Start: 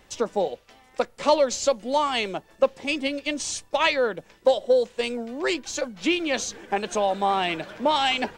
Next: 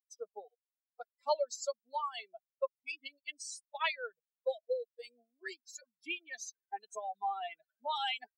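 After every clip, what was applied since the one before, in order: expander on every frequency bin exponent 3; high-pass 520 Hz 24 dB/octave; trim -7.5 dB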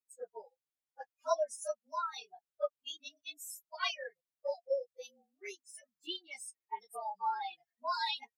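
frequency axis rescaled in octaves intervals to 110%; trim +2.5 dB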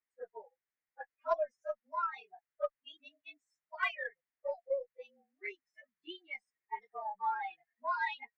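four-pole ladder low-pass 2.2 kHz, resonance 60%; Chebyshev shaper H 4 -28 dB, 6 -31 dB, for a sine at -28 dBFS; trim +9 dB

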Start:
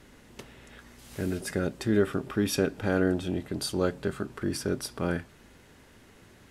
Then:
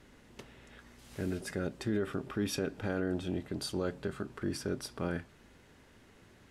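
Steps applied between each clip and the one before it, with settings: treble shelf 9.4 kHz -7 dB; peak limiter -18 dBFS, peak gain reduction 6.5 dB; trim -4.5 dB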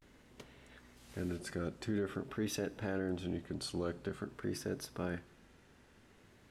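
vibrato 0.48 Hz 94 cents; on a send at -23 dB: reverberation RT60 1.1 s, pre-delay 48 ms; on the sum: trim -3.5 dB

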